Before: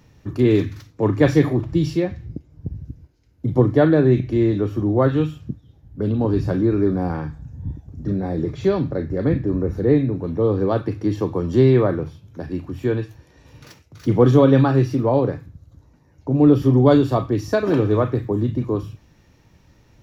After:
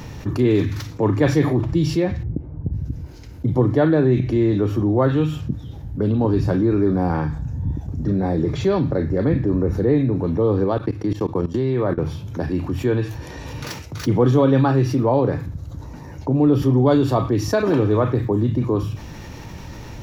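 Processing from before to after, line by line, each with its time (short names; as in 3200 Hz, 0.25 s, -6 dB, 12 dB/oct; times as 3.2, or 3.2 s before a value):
2.23–2.73 LPF 1100 Hz
10.64–11.98 level quantiser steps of 23 dB
whole clip: bell 900 Hz +3.5 dB 0.36 oct; fast leveller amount 50%; gain -3.5 dB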